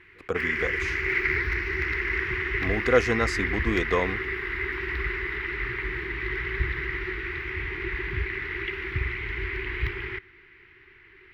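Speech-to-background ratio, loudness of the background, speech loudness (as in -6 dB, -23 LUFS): 0.5 dB, -28.5 LUFS, -28.0 LUFS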